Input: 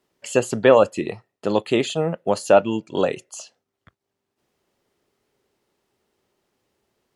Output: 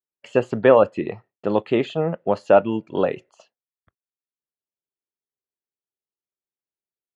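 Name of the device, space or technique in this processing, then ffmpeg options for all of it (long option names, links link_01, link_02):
hearing-loss simulation: -af "lowpass=2300,agate=range=-33dB:threshold=-43dB:ratio=3:detection=peak"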